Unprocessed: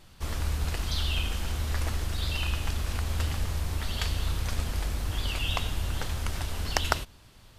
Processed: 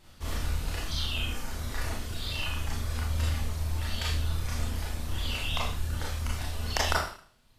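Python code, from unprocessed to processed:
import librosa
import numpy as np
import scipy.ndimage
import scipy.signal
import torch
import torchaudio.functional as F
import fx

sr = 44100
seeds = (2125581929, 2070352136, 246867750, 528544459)

y = fx.dereverb_blind(x, sr, rt60_s=1.5)
y = fx.rev_schroeder(y, sr, rt60_s=0.5, comb_ms=26, drr_db=-5.0)
y = F.gain(torch.from_numpy(y), -4.5).numpy()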